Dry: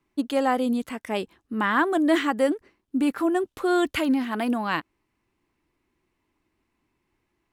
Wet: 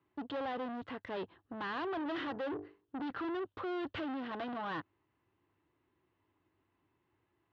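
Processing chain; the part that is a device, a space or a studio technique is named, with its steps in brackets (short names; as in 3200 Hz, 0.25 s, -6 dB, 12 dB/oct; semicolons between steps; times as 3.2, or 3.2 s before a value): 1.83–3.02 notches 50/100/150/200/250/300/350/400/450 Hz; guitar amplifier (tube stage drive 35 dB, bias 0.45; tone controls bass -1 dB, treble -4 dB; speaker cabinet 86–3600 Hz, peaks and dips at 99 Hz +8 dB, 220 Hz -8 dB, 2300 Hz -8 dB)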